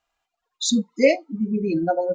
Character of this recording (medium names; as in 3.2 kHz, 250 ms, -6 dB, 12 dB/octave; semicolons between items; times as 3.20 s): noise floor -83 dBFS; spectral tilt -4.0 dB/octave